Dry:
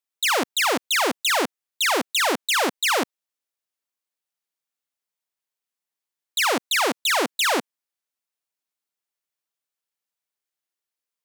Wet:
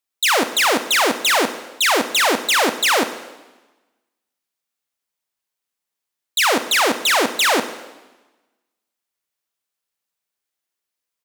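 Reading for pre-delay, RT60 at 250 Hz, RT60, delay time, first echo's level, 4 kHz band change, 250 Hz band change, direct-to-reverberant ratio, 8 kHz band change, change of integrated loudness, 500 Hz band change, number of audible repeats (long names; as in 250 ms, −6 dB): 5 ms, 1.3 s, 1.1 s, 101 ms, −17.5 dB, +5.0 dB, +5.0 dB, 10.0 dB, +5.0 dB, +5.0 dB, +5.0 dB, 1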